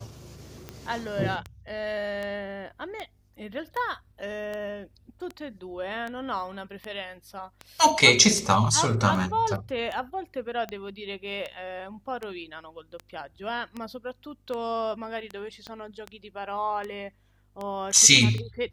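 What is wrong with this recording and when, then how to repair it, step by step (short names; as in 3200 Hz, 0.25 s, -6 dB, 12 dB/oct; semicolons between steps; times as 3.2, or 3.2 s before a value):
tick 78 rpm -21 dBFS
15.67 pop -25 dBFS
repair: de-click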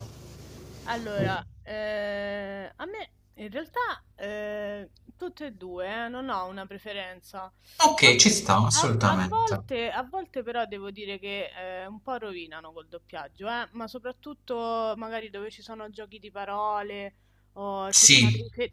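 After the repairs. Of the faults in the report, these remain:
15.67 pop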